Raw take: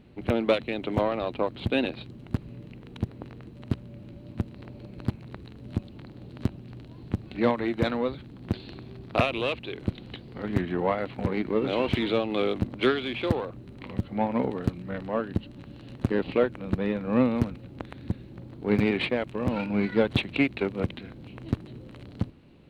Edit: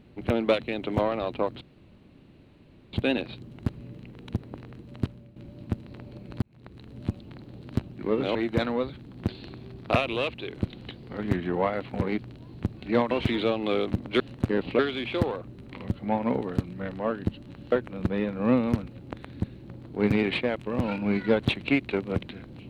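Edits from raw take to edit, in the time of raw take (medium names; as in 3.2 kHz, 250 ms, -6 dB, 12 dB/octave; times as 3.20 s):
1.61 s: insert room tone 1.32 s
3.71–4.04 s: fade out, to -12 dB
5.10–5.58 s: fade in
6.67–7.60 s: swap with 11.43–11.79 s
15.81–16.40 s: move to 12.88 s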